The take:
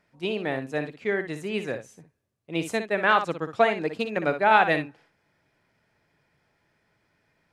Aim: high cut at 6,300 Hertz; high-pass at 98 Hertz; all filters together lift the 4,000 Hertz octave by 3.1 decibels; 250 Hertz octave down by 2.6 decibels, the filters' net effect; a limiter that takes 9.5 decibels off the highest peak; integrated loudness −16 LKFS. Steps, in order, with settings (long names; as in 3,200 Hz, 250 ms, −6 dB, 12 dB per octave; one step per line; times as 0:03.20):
high-pass filter 98 Hz
low-pass filter 6,300 Hz
parametric band 250 Hz −3.5 dB
parametric band 4,000 Hz +4.5 dB
level +12 dB
brickwall limiter −1 dBFS